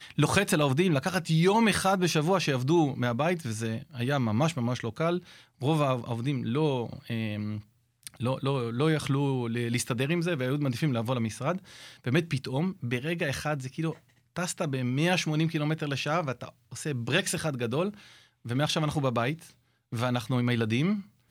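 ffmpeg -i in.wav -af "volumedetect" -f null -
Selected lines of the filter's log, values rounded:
mean_volume: -28.4 dB
max_volume: -9.9 dB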